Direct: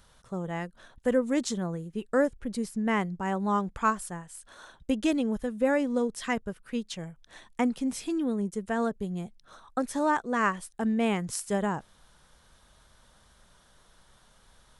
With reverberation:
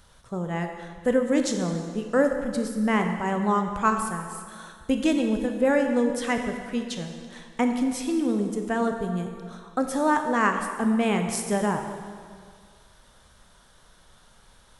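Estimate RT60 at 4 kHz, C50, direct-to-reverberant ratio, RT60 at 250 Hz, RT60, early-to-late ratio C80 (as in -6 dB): 1.7 s, 5.5 dB, 4.5 dB, 1.8 s, 2.0 s, 7.0 dB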